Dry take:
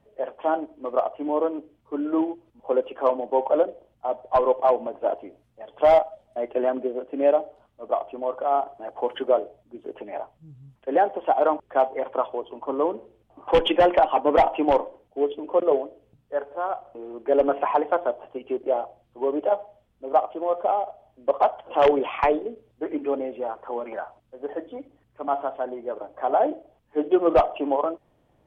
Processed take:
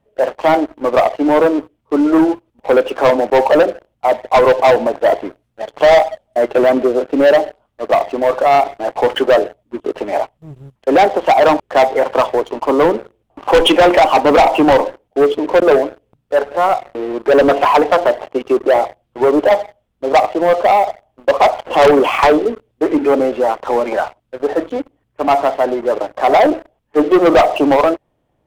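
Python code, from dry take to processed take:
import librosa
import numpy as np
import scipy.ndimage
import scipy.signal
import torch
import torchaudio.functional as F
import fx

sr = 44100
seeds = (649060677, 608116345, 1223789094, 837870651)

y = fx.leveller(x, sr, passes=3)
y = y * librosa.db_to_amplitude(4.5)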